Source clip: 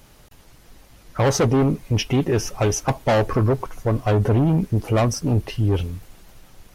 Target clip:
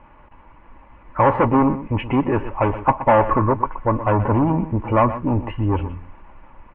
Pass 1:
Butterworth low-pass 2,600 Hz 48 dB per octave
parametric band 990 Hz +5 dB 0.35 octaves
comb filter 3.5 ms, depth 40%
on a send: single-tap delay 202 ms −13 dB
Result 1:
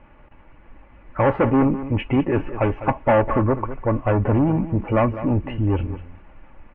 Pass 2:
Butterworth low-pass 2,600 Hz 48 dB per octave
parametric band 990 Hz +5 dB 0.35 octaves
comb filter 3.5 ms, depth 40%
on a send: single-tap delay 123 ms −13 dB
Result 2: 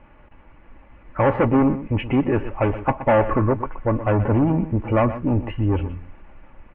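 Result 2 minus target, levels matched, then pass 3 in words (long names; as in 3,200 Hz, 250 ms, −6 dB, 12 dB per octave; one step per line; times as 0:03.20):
1,000 Hz band −4.5 dB
Butterworth low-pass 2,600 Hz 48 dB per octave
parametric band 990 Hz +17 dB 0.35 octaves
comb filter 3.5 ms, depth 40%
on a send: single-tap delay 123 ms −13 dB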